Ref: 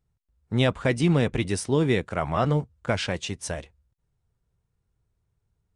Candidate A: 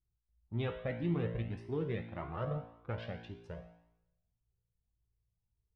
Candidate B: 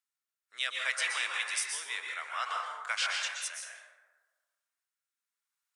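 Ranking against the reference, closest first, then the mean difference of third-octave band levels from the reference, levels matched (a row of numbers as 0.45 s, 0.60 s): A, B; 7.5 dB, 18.5 dB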